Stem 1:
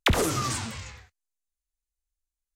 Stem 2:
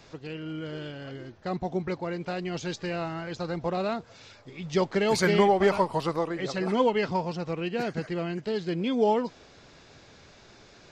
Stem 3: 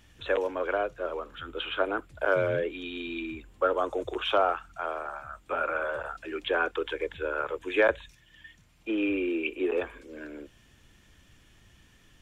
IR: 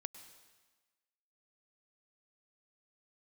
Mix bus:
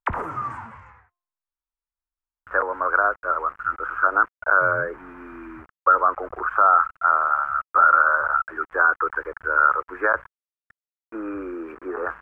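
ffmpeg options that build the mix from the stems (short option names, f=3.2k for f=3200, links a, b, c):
-filter_complex "[0:a]equalizer=f=930:w=3.7:g=8.5,bandreject=f=350.7:t=h:w=4,bandreject=f=701.4:t=h:w=4,bandreject=f=1.0521k:t=h:w=4,volume=-9dB[a];[2:a]highshelf=f=2k:t=q:w=3:g=-13,aeval=exprs='val(0)*gte(abs(val(0)),0.00794)':c=same,adelay=2250,volume=1.5dB,equalizer=f=340:t=o:w=2.9:g=-5,alimiter=limit=-15dB:level=0:latency=1:release=61,volume=0dB[b];[a][b]amix=inputs=2:normalize=0,firequalizer=gain_entry='entry(400,0);entry(1300,12);entry(3800,-25);entry(7400,-23)':delay=0.05:min_phase=1"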